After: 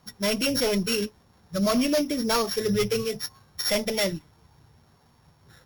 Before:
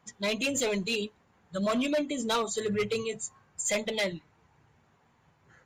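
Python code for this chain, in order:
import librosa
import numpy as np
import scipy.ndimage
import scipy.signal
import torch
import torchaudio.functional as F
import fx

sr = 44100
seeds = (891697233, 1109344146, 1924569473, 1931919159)

y = np.r_[np.sort(x[:len(x) // 8 * 8].reshape(-1, 8), axis=1).ravel(), x[len(x) // 8 * 8:]]
y = fx.low_shelf(y, sr, hz=110.0, db=10.0)
y = y * librosa.db_to_amplitude(4.0)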